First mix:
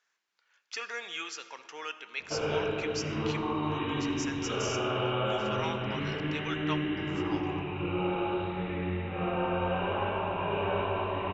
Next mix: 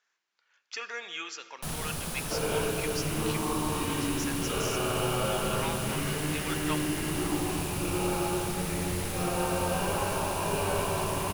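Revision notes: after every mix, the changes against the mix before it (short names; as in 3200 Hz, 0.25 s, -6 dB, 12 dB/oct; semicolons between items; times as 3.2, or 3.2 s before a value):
first sound: unmuted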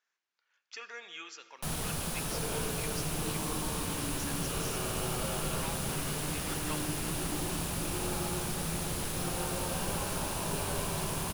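speech -7.0 dB; second sound -9.0 dB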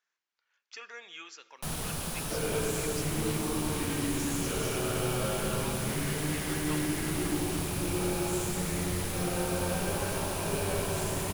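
speech: send -6.0 dB; second sound: remove rippled Chebyshev low-pass 3900 Hz, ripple 9 dB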